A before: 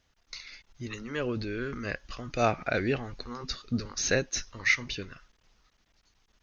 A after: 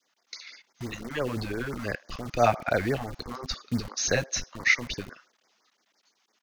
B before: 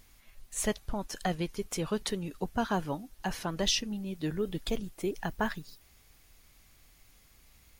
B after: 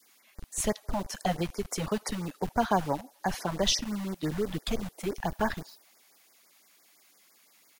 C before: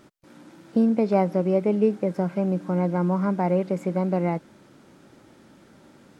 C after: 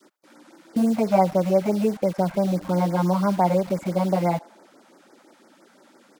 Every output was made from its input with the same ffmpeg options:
-filter_complex "[0:a]adynamicequalizer=threshold=0.01:dfrequency=700:dqfactor=1.2:tfrequency=700:tqfactor=1.2:attack=5:release=100:ratio=0.375:range=3.5:mode=boostabove:tftype=bell,acrossover=split=250|530[a][b][c];[a]acrusher=bits=6:mix=0:aa=0.000001[d];[b]acompressor=threshold=-35dB:ratio=6[e];[c]asplit=2[f][g];[g]adelay=79,lowpass=f=1.5k:p=1,volume=-21dB,asplit=2[h][i];[i]adelay=79,lowpass=f=1.5k:p=1,volume=0.49,asplit=2[j][k];[k]adelay=79,lowpass=f=1.5k:p=1,volume=0.49,asplit=2[l][m];[m]adelay=79,lowpass=f=1.5k:p=1,volume=0.49[n];[f][h][j][l][n]amix=inputs=5:normalize=0[o];[d][e][o]amix=inputs=3:normalize=0,afftfilt=real='re*(1-between(b*sr/1024,330*pow(3400/330,0.5+0.5*sin(2*PI*5.9*pts/sr))/1.41,330*pow(3400/330,0.5+0.5*sin(2*PI*5.9*pts/sr))*1.41))':imag='im*(1-between(b*sr/1024,330*pow(3400/330,0.5+0.5*sin(2*PI*5.9*pts/sr))/1.41,330*pow(3400/330,0.5+0.5*sin(2*PI*5.9*pts/sr))*1.41))':win_size=1024:overlap=0.75,volume=2dB"

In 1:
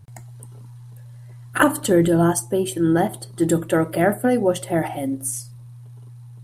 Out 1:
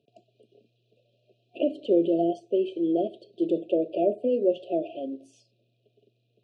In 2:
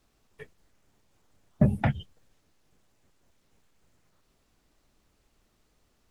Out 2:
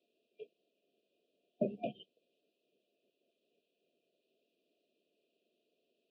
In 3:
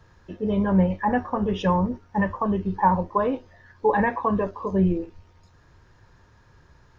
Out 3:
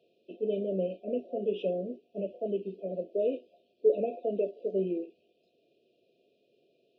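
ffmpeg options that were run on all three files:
-filter_complex "[0:a]highpass=f=270:w=0.5412,highpass=f=270:w=1.3066,equalizer=f=290:t=q:w=4:g=-4,equalizer=f=410:t=q:w=4:g=4,equalizer=f=930:t=q:w=4:g=4,lowpass=f=3.5k:w=0.5412,lowpass=f=3.5k:w=1.3066,acrossover=split=2600[a][b];[b]acompressor=threshold=-49dB:ratio=4:attack=1:release=60[c];[a][c]amix=inputs=2:normalize=0,afftfilt=real='re*(1-between(b*sr/4096,720,2400))':imag='im*(1-between(b*sr/4096,720,2400))':win_size=4096:overlap=0.75,volume=-4.5dB"

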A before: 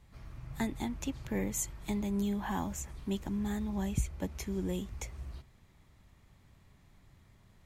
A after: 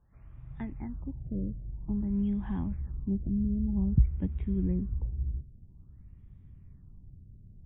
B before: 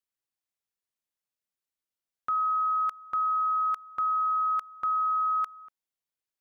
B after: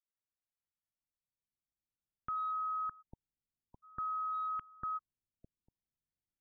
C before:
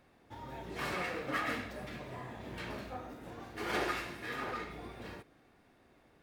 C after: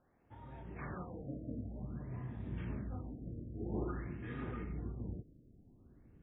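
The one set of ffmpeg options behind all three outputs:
-af "asubboost=boost=10:cutoff=230,adynamicsmooth=sensitivity=1:basefreq=3k,afftfilt=real='re*lt(b*sr/1024,650*pow(3900/650,0.5+0.5*sin(2*PI*0.51*pts/sr)))':imag='im*lt(b*sr/1024,650*pow(3900/650,0.5+0.5*sin(2*PI*0.51*pts/sr)))':win_size=1024:overlap=0.75,volume=-7.5dB"

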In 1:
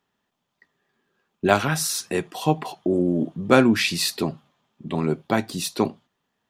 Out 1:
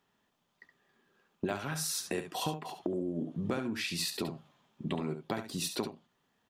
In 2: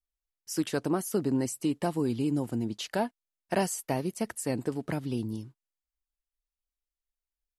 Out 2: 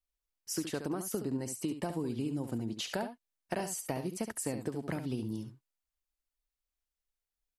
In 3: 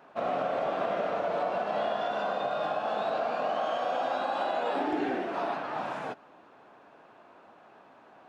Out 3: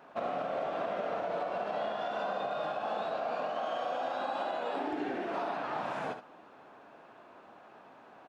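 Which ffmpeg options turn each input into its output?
-af "acompressor=threshold=-31dB:ratio=16,aecho=1:1:70:0.355"

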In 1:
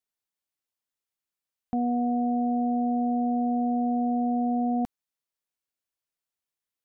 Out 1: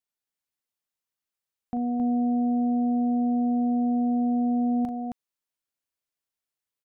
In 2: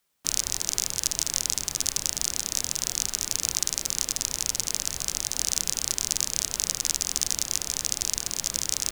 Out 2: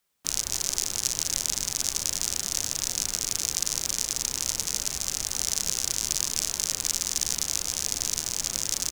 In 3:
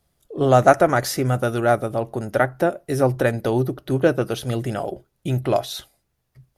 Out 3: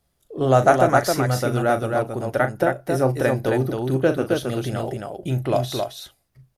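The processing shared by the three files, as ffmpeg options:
-af "aecho=1:1:37.9|268.2:0.316|0.631,volume=-2dB"

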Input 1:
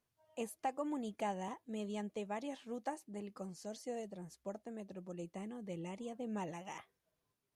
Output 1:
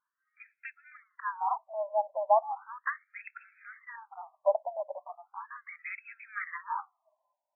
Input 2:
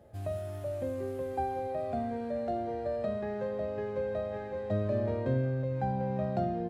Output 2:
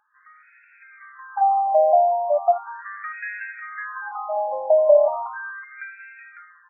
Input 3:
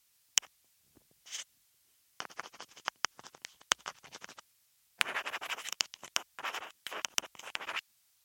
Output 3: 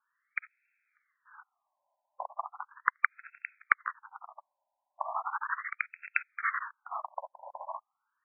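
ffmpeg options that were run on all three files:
-af "dynaudnorm=f=360:g=7:m=14dB,bass=f=250:g=-1,treble=f=4k:g=13,afftfilt=real='re*between(b*sr/1024,730*pow(1900/730,0.5+0.5*sin(2*PI*0.37*pts/sr))/1.41,730*pow(1900/730,0.5+0.5*sin(2*PI*0.37*pts/sr))*1.41)':imag='im*between(b*sr/1024,730*pow(1900/730,0.5+0.5*sin(2*PI*0.37*pts/sr))/1.41,730*pow(1900/730,0.5+0.5*sin(2*PI*0.37*pts/sr))*1.41)':win_size=1024:overlap=0.75,volume=6.5dB"

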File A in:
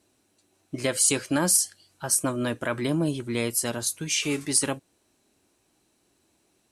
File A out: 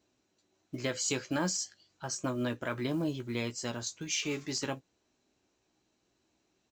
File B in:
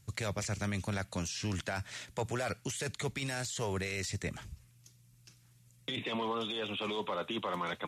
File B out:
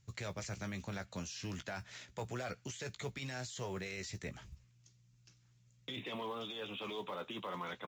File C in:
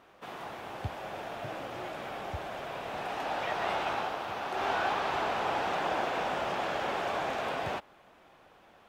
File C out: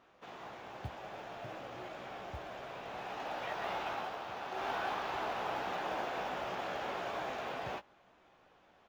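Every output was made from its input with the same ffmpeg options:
-filter_complex "[0:a]aresample=16000,aresample=44100,acrusher=bits=8:mode=log:mix=0:aa=0.000001,asplit=2[a][b];[b]adelay=16,volume=-9dB[c];[a][c]amix=inputs=2:normalize=0,volume=-7dB"

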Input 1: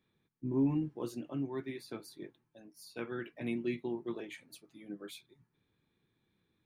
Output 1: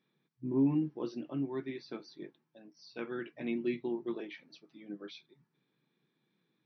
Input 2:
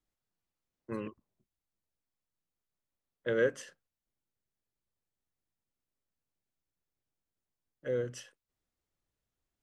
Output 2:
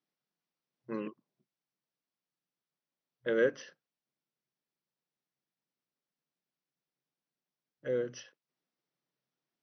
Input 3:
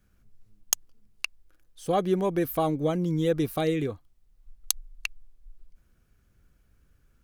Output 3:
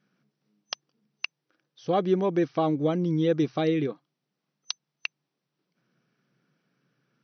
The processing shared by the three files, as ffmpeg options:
-af "afftfilt=real='re*between(b*sr/4096,120,6100)':imag='im*between(b*sr/4096,120,6100)':win_size=4096:overlap=0.75,adynamicequalizer=threshold=0.00891:dfrequency=320:dqfactor=2.5:tfrequency=320:tqfactor=2.5:attack=5:release=100:ratio=0.375:range=1.5:mode=boostabove:tftype=bell"

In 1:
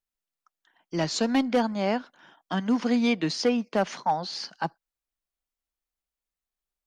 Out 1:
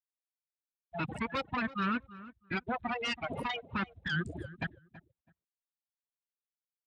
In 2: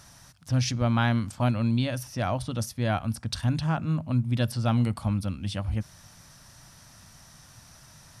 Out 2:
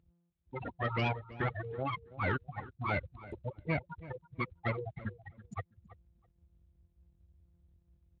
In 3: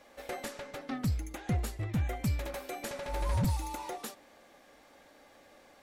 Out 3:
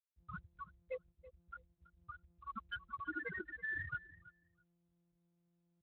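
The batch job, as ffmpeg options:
-filter_complex "[0:a]agate=range=-14dB:threshold=-54dB:ratio=16:detection=peak,areverse,acompressor=mode=upward:threshold=-32dB:ratio=2.5,areverse,highpass=600,aeval=exprs='0.188*(cos(1*acos(clip(val(0)/0.188,-1,1)))-cos(1*PI/2))+0.0119*(cos(2*acos(clip(val(0)/0.188,-1,1)))-cos(2*PI/2))+0.0335*(cos(5*acos(clip(val(0)/0.188,-1,1)))-cos(5*PI/2))':c=same,acontrast=32,aeval=exprs='abs(val(0))':c=same,afftfilt=real='re*gte(hypot(re,im),0.1)':imag='im*gte(hypot(re,im),0.1)':win_size=1024:overlap=0.75,asoftclip=type=tanh:threshold=-18.5dB,asplit=2[a][b];[b]adelay=328,lowpass=f=1.6k:p=1,volume=-16dB,asplit=2[c][d];[d]adelay=328,lowpass=f=1.6k:p=1,volume=0.19[e];[a][c][e]amix=inputs=3:normalize=0,aresample=22050,aresample=44100" -ar 32000 -c:a libspeex -b:a 28k

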